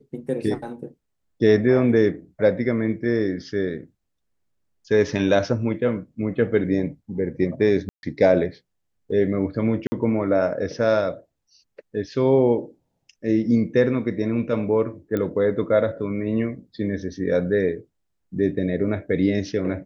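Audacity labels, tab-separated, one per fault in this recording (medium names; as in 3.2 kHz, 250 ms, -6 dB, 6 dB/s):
7.890000	8.030000	dropout 141 ms
9.870000	9.920000	dropout 50 ms
15.170000	15.170000	pop -14 dBFS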